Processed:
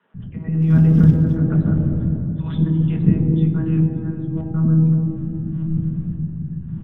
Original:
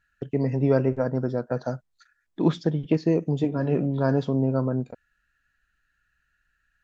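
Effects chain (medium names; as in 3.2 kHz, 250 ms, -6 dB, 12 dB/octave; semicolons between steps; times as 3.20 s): wind noise 90 Hz -27 dBFS; peaking EQ 480 Hz -5 dB 1 oct; monotone LPC vocoder at 8 kHz 160 Hz; bands offset in time highs, lows 140 ms, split 560 Hz; 0.62–1.37 s: short-mantissa float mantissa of 4-bit; peaking EQ 180 Hz +9 dB 1.5 oct; 3.86–4.54 s: compressor with a negative ratio -33 dBFS, ratio -1; reverberation RT60 3.5 s, pre-delay 3 ms, DRR 3.5 dB; trim -9.5 dB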